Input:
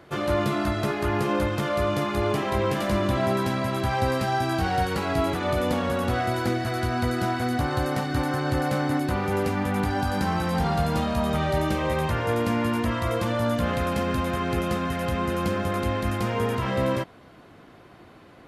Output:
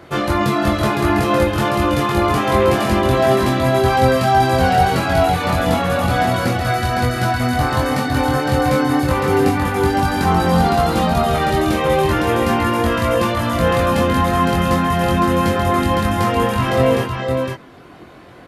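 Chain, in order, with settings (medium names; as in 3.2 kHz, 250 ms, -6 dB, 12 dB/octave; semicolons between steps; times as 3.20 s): reverb removal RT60 0.68 s; doubling 23 ms -3 dB; multi-tap echo 59/510 ms -13.5/-4.5 dB; trim +7.5 dB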